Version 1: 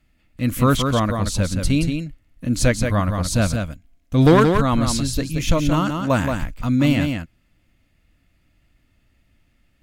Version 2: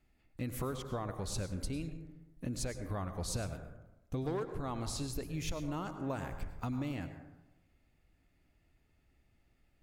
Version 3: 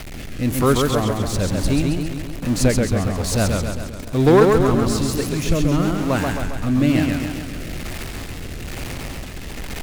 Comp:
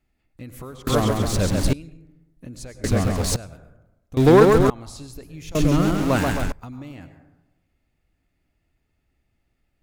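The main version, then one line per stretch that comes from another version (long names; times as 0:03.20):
2
0:00.87–0:01.73: punch in from 3
0:02.84–0:03.36: punch in from 3
0:04.17–0:04.70: punch in from 3
0:05.55–0:06.52: punch in from 3
not used: 1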